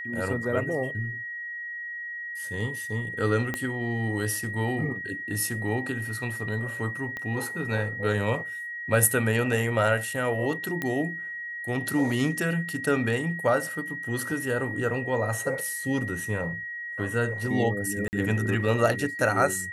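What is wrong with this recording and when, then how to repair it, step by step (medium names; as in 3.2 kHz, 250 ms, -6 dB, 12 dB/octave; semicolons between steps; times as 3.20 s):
whine 1.9 kHz -33 dBFS
3.54 s: pop -15 dBFS
7.17 s: pop -21 dBFS
10.82 s: pop -15 dBFS
18.08–18.13 s: dropout 49 ms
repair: de-click; band-stop 1.9 kHz, Q 30; interpolate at 18.08 s, 49 ms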